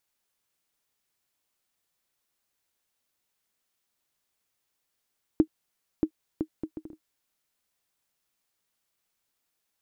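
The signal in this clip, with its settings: bouncing ball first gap 0.63 s, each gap 0.6, 314 Hz, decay 76 ms -9 dBFS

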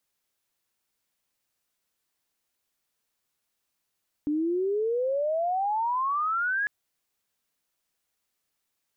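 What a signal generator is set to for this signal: sweep logarithmic 290 Hz -> 1.7 kHz -23.5 dBFS -> -24 dBFS 2.40 s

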